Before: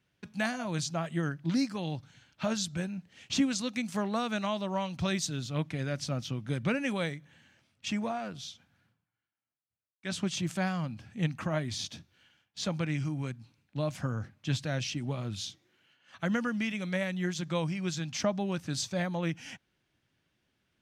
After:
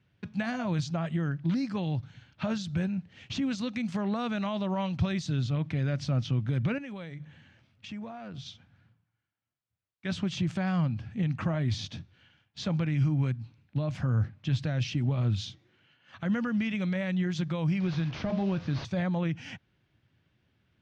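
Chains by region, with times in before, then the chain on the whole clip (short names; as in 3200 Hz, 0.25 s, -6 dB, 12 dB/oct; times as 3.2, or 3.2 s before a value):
6.78–8.46 notches 50/100/150 Hz + compressor 5:1, threshold -43 dBFS
17.8–18.85 delta modulation 32 kbps, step -43.5 dBFS + de-hum 103.5 Hz, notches 34
whole clip: limiter -27 dBFS; LPF 4100 Hz 12 dB/oct; bell 100 Hz +9.5 dB 1.6 oct; gain +2.5 dB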